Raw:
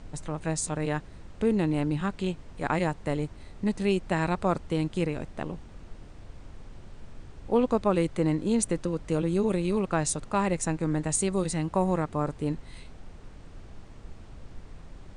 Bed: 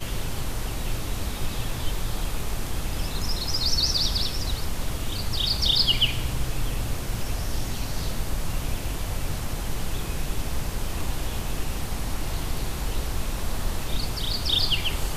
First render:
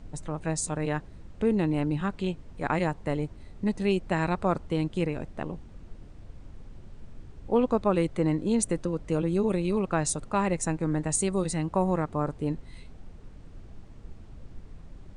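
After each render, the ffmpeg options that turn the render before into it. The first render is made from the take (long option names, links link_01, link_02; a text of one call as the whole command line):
ffmpeg -i in.wav -af "afftdn=noise_reduction=6:noise_floor=-48" out.wav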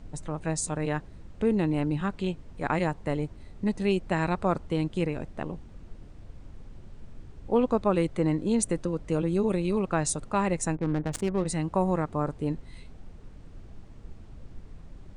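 ffmpeg -i in.wav -filter_complex "[0:a]asettb=1/sr,asplit=3[link_01][link_02][link_03];[link_01]atrim=end=10.754[link_04];[link_02]atrim=start=10.75:end=11.47,asetpts=PTS-STARTPTS,afade=type=in:duration=0.004:curve=qsin,afade=type=out:start_time=0.716:duration=0.004:curve=qsin,adynamicsmooth=sensitivity=4:basefreq=540[link_05];[link_03]atrim=start=11.466[link_06];[link_04][link_05]acrossfade=duration=0.004:curve1=hsin:curve2=qsin[link_07];[link_07][link_06]acrossfade=duration=0.004:curve1=qsin:curve2=hsin" out.wav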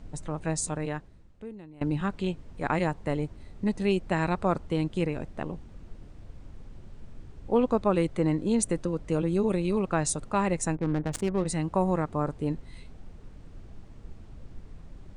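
ffmpeg -i in.wav -filter_complex "[0:a]asplit=2[link_01][link_02];[link_01]atrim=end=1.81,asetpts=PTS-STARTPTS,afade=type=out:start_time=0.67:duration=1.14:curve=qua:silence=0.0749894[link_03];[link_02]atrim=start=1.81,asetpts=PTS-STARTPTS,afade=type=in:duration=0.004:curve=hsin:silence=0.0749894[link_04];[link_03][link_04]concat=n=2:v=0:a=1" out.wav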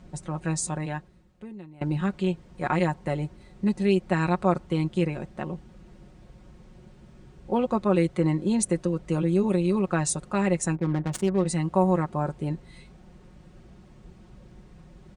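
ffmpeg -i in.wav -af "highpass=53,aecho=1:1:5.5:0.67" out.wav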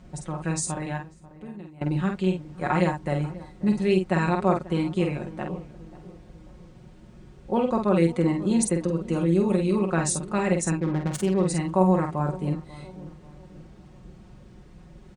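ffmpeg -i in.wav -filter_complex "[0:a]asplit=2[link_01][link_02];[link_02]adelay=48,volume=-5dB[link_03];[link_01][link_03]amix=inputs=2:normalize=0,asplit=2[link_04][link_05];[link_05]adelay=540,lowpass=frequency=990:poles=1,volume=-17dB,asplit=2[link_06][link_07];[link_07]adelay=540,lowpass=frequency=990:poles=1,volume=0.49,asplit=2[link_08][link_09];[link_09]adelay=540,lowpass=frequency=990:poles=1,volume=0.49,asplit=2[link_10][link_11];[link_11]adelay=540,lowpass=frequency=990:poles=1,volume=0.49[link_12];[link_04][link_06][link_08][link_10][link_12]amix=inputs=5:normalize=0" out.wav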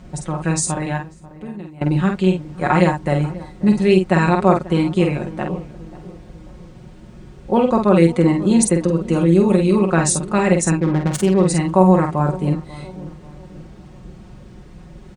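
ffmpeg -i in.wav -af "volume=8dB,alimiter=limit=-1dB:level=0:latency=1" out.wav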